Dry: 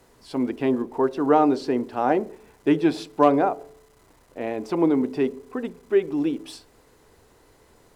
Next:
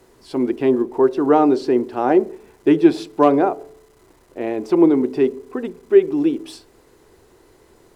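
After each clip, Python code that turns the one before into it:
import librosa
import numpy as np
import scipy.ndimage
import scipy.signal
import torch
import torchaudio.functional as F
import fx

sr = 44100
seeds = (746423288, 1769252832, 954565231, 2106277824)

y = fx.peak_eq(x, sr, hz=360.0, db=9.5, octaves=0.33)
y = y * librosa.db_to_amplitude(2.0)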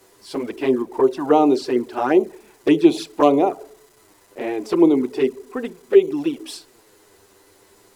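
y = fx.tilt_eq(x, sr, slope=2.0)
y = fx.env_flanger(y, sr, rest_ms=10.6, full_db=-13.0)
y = y * librosa.db_to_amplitude(3.0)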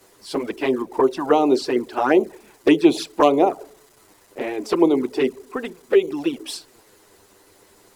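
y = fx.hpss(x, sr, part='percussive', gain_db=8)
y = y * librosa.db_to_amplitude(-4.0)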